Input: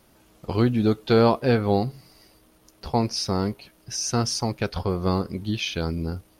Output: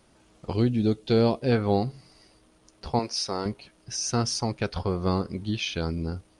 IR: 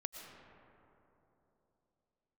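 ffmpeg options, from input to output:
-filter_complex "[0:a]asettb=1/sr,asplit=3[link_01][link_02][link_03];[link_01]atrim=end=0.534[link_04];[link_02]atrim=start=0.53:end=1.52,asetpts=PTS-STARTPTS,afade=type=in:duration=0.004:curve=qsin,afade=type=out:start_time=0.986:duration=0.004:curve=qsin,equalizer=frequency=1200:width=1:gain=-10[link_05];[link_03]atrim=start=1.516[link_06];[link_04][link_05]acrossfade=duration=0.004:curve1=hsin:curve2=qsin[link_07];[link_07][link_06]acrossfade=duration=0.004:curve1=qsin:curve2=hsin,aresample=22050,aresample=44100,asettb=1/sr,asplit=3[link_08][link_09][link_10];[link_08]atrim=end=2.994[link_11];[link_09]atrim=start=2.99:end=3.46,asetpts=PTS-STARTPTS,afade=type=in:duration=0.004:curve=qsin,afade=type=out:start_time=0.466:duration=0.004:curve=qsin,bass=frequency=250:gain=-14,treble=frequency=4000:gain=1[link_12];[link_10]atrim=start=3.456[link_13];[link_11][link_12]acrossfade=duration=0.004:curve1=hsin:curve2=qsin[link_14];[link_14][link_13]acrossfade=duration=0.004:curve1=qsin:curve2=hsin,volume=-2dB"

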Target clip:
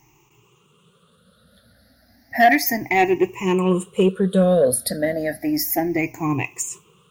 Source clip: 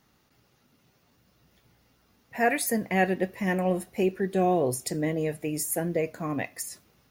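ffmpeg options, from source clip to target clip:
ffmpeg -i in.wav -af "afftfilt=real='re*pow(10,23/40*sin(2*PI*(0.71*log(max(b,1)*sr/1024/100)/log(2)-(0.32)*(pts-256)/sr)))':imag='im*pow(10,23/40*sin(2*PI*(0.71*log(max(b,1)*sr/1024/100)/log(2)-(0.32)*(pts-256)/sr)))':win_size=1024:overlap=0.75,acontrast=71,volume=-3.5dB" out.wav

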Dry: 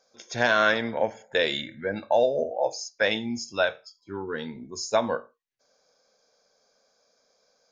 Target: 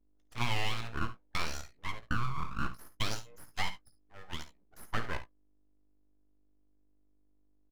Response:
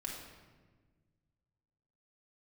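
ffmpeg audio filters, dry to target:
-filter_complex "[0:a]asplit=3[link_01][link_02][link_03];[link_01]afade=type=out:start_time=2.78:duration=0.02[link_04];[link_02]aemphasis=mode=production:type=riaa,afade=type=in:start_time=2.78:duration=0.02,afade=type=out:start_time=4.84:duration=0.02[link_05];[link_03]afade=type=in:start_time=4.84:duration=0.02[link_06];[link_04][link_05][link_06]amix=inputs=3:normalize=0,anlmdn=10,acrossover=split=4500[link_07][link_08];[link_08]acompressor=threshold=-43dB:ratio=4:attack=1:release=60[link_09];[link_07][link_09]amix=inputs=2:normalize=0,acrossover=split=550 2800:gain=0.141 1 0.141[link_10][link_11][link_12];[link_10][link_11][link_12]amix=inputs=3:normalize=0,acompressor=threshold=-25dB:ratio=8,aeval=exprs='val(0)+0.000398*(sin(2*PI*50*n/s)+sin(2*PI*2*50*n/s)/2+sin(2*PI*3*50*n/s)/3+sin(2*PI*4*50*n/s)/4+sin(2*PI*5*50*n/s)/5)':channel_layout=same,aeval=exprs='abs(val(0))':channel_layout=same,asplit=2[link_13][link_14];[link_14]adelay=17,volume=-11dB[link_15];[link_13][link_15]amix=inputs=2:normalize=0,aecho=1:1:54|70:0.2|0.168,volume=-1.5dB"

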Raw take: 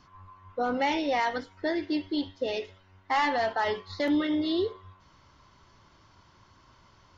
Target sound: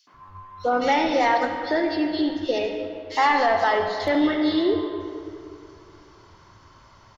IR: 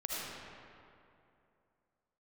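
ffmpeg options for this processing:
-filter_complex "[0:a]acrossover=split=220|3100[link_01][link_02][link_03];[link_02]adelay=70[link_04];[link_01]adelay=140[link_05];[link_05][link_04][link_03]amix=inputs=3:normalize=0,asplit=2[link_06][link_07];[1:a]atrim=start_sample=2205[link_08];[link_07][link_08]afir=irnorm=-1:irlink=0,volume=-6dB[link_09];[link_06][link_09]amix=inputs=2:normalize=0,volume=4dB"

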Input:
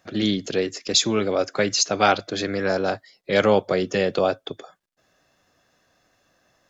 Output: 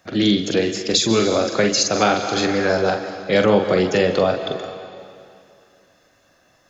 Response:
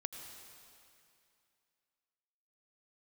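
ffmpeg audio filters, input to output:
-filter_complex "[0:a]asplit=2[link_01][link_02];[1:a]atrim=start_sample=2205,adelay=44[link_03];[link_02][link_03]afir=irnorm=-1:irlink=0,volume=-2.5dB[link_04];[link_01][link_04]amix=inputs=2:normalize=0,acrossover=split=370[link_05][link_06];[link_06]acompressor=threshold=-20dB:ratio=4[link_07];[link_05][link_07]amix=inputs=2:normalize=0,volume=4.5dB"

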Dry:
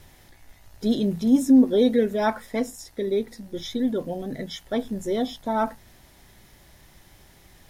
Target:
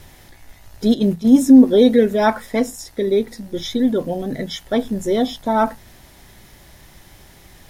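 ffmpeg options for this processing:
ffmpeg -i in.wav -filter_complex "[0:a]asettb=1/sr,asplit=3[link_01][link_02][link_03];[link_01]atrim=end=0.944[link_04];[link_02]atrim=start=0.94:end=1.4,asetpts=PTS-STARTPTS,afade=type=in:duration=0.004:curve=qsin,afade=type=out:start_time=0.456:duration=0.004:curve=qsin,agate=range=-9dB:threshold=-25dB:ratio=16:detection=peak[link_05];[link_03]atrim=start=1.396[link_06];[link_04][link_05]acrossfade=duration=0.004:curve1=hsin:curve2=qsin[link_07];[link_07][link_06]acrossfade=duration=0.004:curve1=qsin:curve2=hsin,volume=7dB" out.wav

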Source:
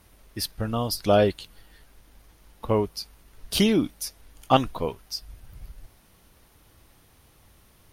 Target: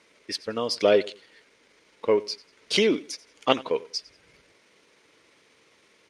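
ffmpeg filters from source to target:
ffmpeg -i in.wav -filter_complex "[0:a]asplit=2[link_01][link_02];[link_02]aeval=exprs='clip(val(0),-1,0.075)':channel_layout=same,volume=-12dB[link_03];[link_01][link_03]amix=inputs=2:normalize=0,highpass=330,equalizer=frequency=450:width_type=q:width=4:gain=6,equalizer=frequency=760:width_type=q:width=4:gain=-9,equalizer=frequency=1200:width_type=q:width=4:gain=-3,equalizer=frequency=2200:width_type=q:width=4:gain=7,lowpass=frequency=7400:width=0.5412,lowpass=frequency=7400:width=1.3066,aecho=1:1:118|236:0.0944|0.0264,atempo=1.3" out.wav

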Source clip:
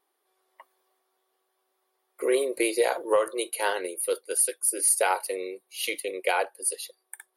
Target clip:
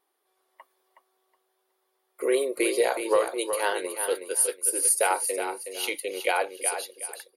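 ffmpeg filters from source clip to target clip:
ffmpeg -i in.wav -af "aecho=1:1:369|738|1107:0.398|0.0955|0.0229" out.wav

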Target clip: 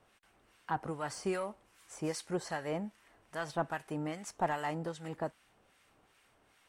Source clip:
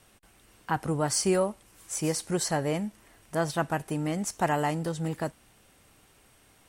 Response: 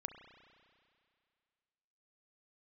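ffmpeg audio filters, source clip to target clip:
-filter_complex "[0:a]asplit=2[link_01][link_02];[link_02]highpass=frequency=720:poles=1,volume=9dB,asoftclip=type=tanh:threshold=-12.5dB[link_03];[link_01][link_03]amix=inputs=2:normalize=0,lowpass=frequency=2100:poles=1,volume=-6dB,acrossover=split=1200[link_04][link_05];[link_04]aeval=exprs='val(0)*(1-0.7/2+0.7/2*cos(2*PI*2.5*n/s))':channel_layout=same[link_06];[link_05]aeval=exprs='val(0)*(1-0.7/2-0.7/2*cos(2*PI*2.5*n/s))':channel_layout=same[link_07];[link_06][link_07]amix=inputs=2:normalize=0,volume=-4dB"

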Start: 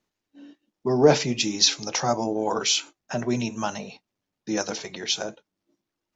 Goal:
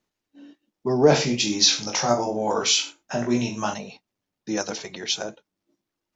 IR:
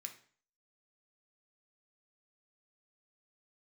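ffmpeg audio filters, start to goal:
-filter_complex "[0:a]asettb=1/sr,asplit=3[link_01][link_02][link_03];[link_01]atrim=end=1.104[link_04];[link_02]atrim=start=1.1:end=3.74,asetpts=PTS-STARTPTS,afade=type=in:duration=0.004:curve=qsin,afade=type=out:start_time=2.636:duration=0.004:curve=qsin,aecho=1:1:20|42|66.2|92.82|122.1:0.631|0.398|0.251|0.158|0.1,atrim=end_sample=116424[link_05];[link_03]atrim=start=3.736[link_06];[link_04][link_05]acrossfade=duration=0.004:curve1=hsin:curve2=qsin[link_07];[link_07][link_06]acrossfade=duration=0.004:curve1=qsin:curve2=hsin"

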